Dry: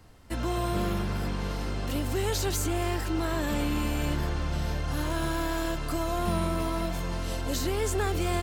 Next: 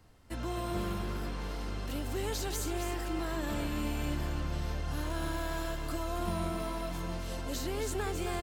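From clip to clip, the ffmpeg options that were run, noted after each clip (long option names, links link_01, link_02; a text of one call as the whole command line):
ffmpeg -i in.wav -af "aecho=1:1:269:0.422,volume=-6.5dB" out.wav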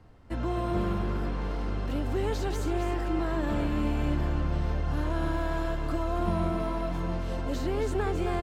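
ffmpeg -i in.wav -af "lowpass=frequency=1400:poles=1,volume=6.5dB" out.wav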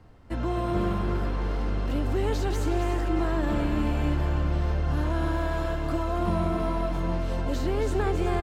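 ffmpeg -i in.wav -af "aecho=1:1:366:0.282,volume=2dB" out.wav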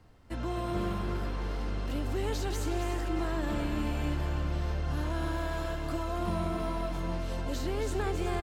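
ffmpeg -i in.wav -af "highshelf=frequency=2700:gain=7.5,volume=-6dB" out.wav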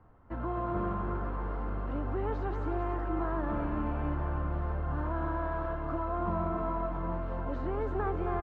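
ffmpeg -i in.wav -af "lowpass=frequency=1200:width_type=q:width=1.9,volume=-1.5dB" out.wav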